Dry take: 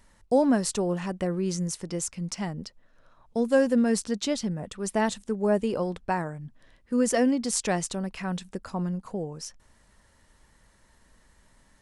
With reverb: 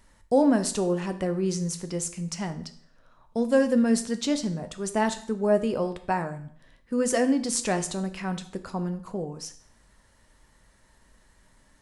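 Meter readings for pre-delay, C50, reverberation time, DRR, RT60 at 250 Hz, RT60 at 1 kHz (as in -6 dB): 8 ms, 13.0 dB, 0.55 s, 8.5 dB, 0.55 s, 0.55 s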